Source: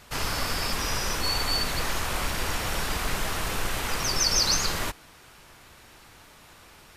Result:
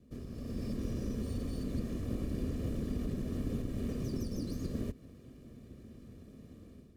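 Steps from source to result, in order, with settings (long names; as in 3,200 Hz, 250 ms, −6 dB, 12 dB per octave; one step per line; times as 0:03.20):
lower of the sound and its delayed copy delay 1.7 ms
downward compressor, threshold −33 dBFS, peak gain reduction 12.5 dB
high-pass filter 99 Hz 6 dB per octave
automatic gain control gain up to 10 dB
drawn EQ curve 170 Hz 0 dB, 250 Hz +13 dB, 840 Hz −28 dB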